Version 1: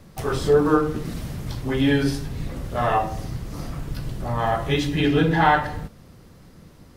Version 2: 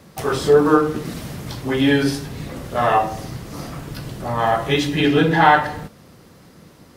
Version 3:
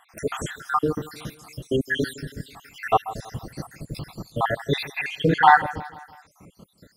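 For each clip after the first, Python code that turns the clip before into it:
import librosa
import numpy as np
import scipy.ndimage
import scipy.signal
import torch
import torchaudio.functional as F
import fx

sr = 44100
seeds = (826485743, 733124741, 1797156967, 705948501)

y1 = fx.highpass(x, sr, hz=200.0, slope=6)
y1 = y1 * librosa.db_to_amplitude(5.0)
y2 = fx.spec_dropout(y1, sr, seeds[0], share_pct=76)
y2 = fx.echo_feedback(y2, sr, ms=163, feedback_pct=51, wet_db=-18.5)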